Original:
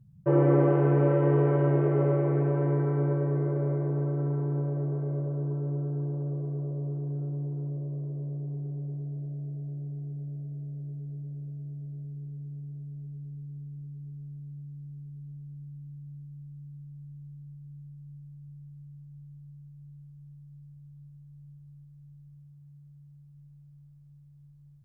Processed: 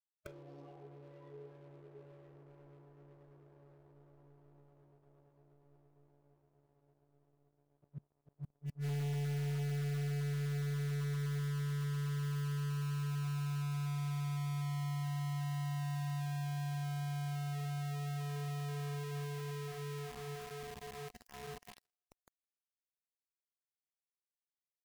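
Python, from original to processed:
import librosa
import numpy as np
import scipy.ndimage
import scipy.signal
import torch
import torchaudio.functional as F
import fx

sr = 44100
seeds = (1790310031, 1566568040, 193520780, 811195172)

p1 = scipy.signal.sosfilt(scipy.signal.butter(4, 49.0, 'highpass', fs=sr, output='sos'), x)
p2 = fx.high_shelf_res(p1, sr, hz=1500.0, db=-13.0, q=1.5)
p3 = np.where(np.abs(p2) >= 10.0 ** (-46.5 / 20.0), p2, 0.0)
p4 = p3 + fx.echo_thinned(p3, sr, ms=164, feedback_pct=68, hz=410.0, wet_db=-18, dry=0)
p5 = fx.gate_flip(p4, sr, shuts_db=-29.0, range_db=-34)
p6 = fx.leveller(p5, sr, passes=5)
p7 = fx.noise_reduce_blind(p6, sr, reduce_db=11)
y = p7 * librosa.db_to_amplitude(-6.5)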